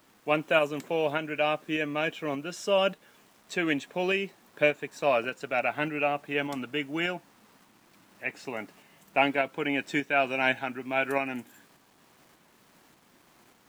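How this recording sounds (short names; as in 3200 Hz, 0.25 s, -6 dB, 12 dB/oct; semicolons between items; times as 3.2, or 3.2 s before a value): a quantiser's noise floor 10-bit, dither none; tremolo saw up 1.7 Hz, depth 35%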